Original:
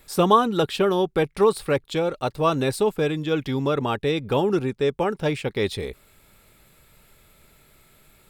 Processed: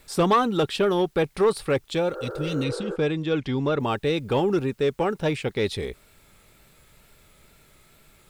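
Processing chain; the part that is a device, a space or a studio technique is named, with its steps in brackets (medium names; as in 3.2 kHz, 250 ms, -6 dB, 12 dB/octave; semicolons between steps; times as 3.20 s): compact cassette (saturation -12 dBFS, distortion -17 dB; low-pass 11 kHz 12 dB/octave; wow and flutter; white noise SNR 41 dB); 2.18–2.93 s: spectral replace 340–1800 Hz; 2.64–3.80 s: distance through air 64 m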